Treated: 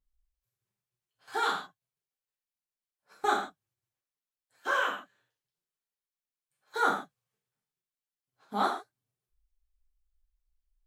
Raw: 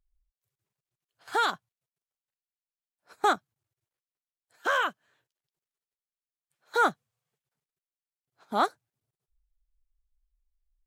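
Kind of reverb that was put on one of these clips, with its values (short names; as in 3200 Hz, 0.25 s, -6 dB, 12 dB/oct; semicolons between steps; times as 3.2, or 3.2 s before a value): non-linear reverb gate 0.18 s falling, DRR -5 dB; gain -8.5 dB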